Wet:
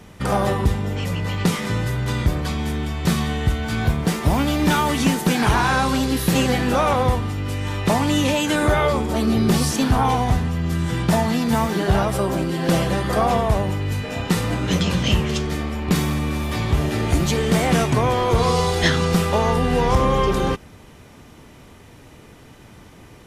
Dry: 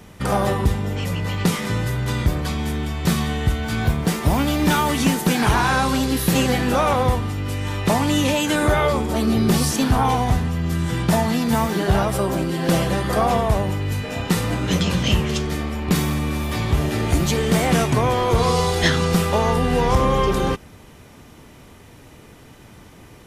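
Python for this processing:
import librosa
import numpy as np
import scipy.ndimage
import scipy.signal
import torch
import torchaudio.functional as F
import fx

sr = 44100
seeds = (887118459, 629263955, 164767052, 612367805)

y = fx.high_shelf(x, sr, hz=12000.0, db=-6.0)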